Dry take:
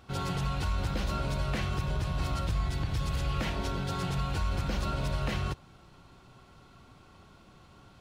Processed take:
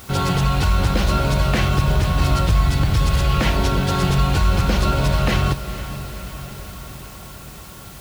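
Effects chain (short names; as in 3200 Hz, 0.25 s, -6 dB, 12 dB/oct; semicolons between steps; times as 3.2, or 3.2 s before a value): in parallel at -4.5 dB: requantised 8-bit, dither triangular; on the sum: diffused feedback echo 0.473 s, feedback 65%, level -13 dB; gain +9 dB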